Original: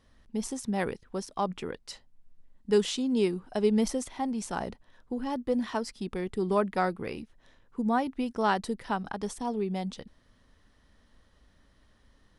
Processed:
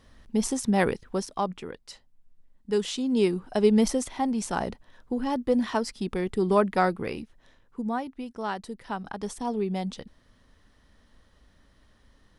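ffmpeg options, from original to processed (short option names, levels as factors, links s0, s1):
-af "volume=11.9,afade=t=out:st=1.03:d=0.56:silence=0.354813,afade=t=in:st=2.79:d=0.59:silence=0.473151,afade=t=out:st=6.94:d=1.18:silence=0.316228,afade=t=in:st=8.7:d=0.84:silence=0.398107"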